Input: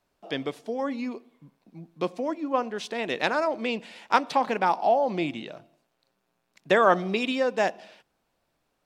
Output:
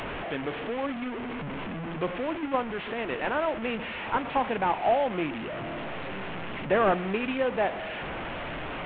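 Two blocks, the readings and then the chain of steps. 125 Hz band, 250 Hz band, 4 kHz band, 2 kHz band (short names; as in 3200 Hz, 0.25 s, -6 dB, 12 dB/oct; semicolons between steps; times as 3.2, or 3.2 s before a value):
+3.0 dB, -1.0 dB, -3.0 dB, -1.5 dB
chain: delta modulation 16 kbps, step -26.5 dBFS; gain -2 dB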